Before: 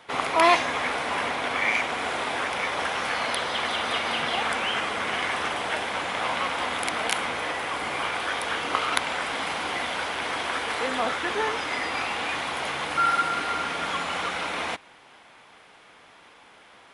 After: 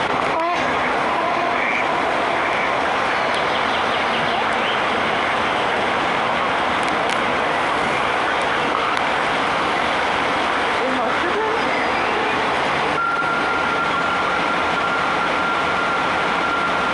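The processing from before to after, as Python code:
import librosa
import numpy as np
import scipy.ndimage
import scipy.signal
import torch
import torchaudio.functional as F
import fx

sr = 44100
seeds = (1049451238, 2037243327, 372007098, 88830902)

p1 = scipy.signal.sosfilt(scipy.signal.butter(4, 9300.0, 'lowpass', fs=sr, output='sos'), x)
p2 = fx.high_shelf(p1, sr, hz=2500.0, db=-10.0)
p3 = fx.notch(p2, sr, hz=7300.0, q=19.0)
p4 = p3 + fx.echo_diffused(p3, sr, ms=847, feedback_pct=59, wet_db=-6.5, dry=0)
p5 = fx.env_flatten(p4, sr, amount_pct=100)
y = p5 * librosa.db_to_amplitude(-2.0)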